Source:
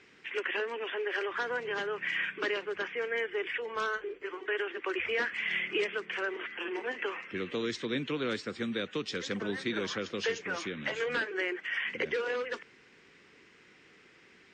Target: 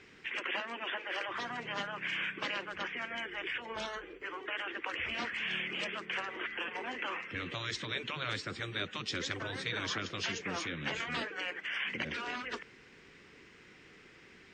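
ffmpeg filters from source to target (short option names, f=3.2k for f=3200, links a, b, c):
-af "lowshelf=f=100:g=11,afftfilt=real='re*lt(hypot(re,im),0.0891)':imag='im*lt(hypot(re,im),0.0891)':win_size=1024:overlap=0.75,volume=1.5dB"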